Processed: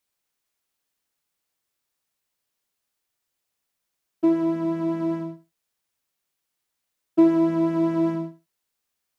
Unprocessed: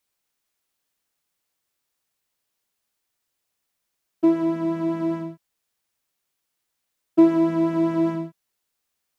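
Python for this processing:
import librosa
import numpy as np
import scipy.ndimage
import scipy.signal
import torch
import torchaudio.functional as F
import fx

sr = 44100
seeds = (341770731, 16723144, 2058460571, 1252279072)

y = fx.echo_feedback(x, sr, ms=73, feedback_pct=18, wet_db=-14.5)
y = y * 10.0 ** (-2.0 / 20.0)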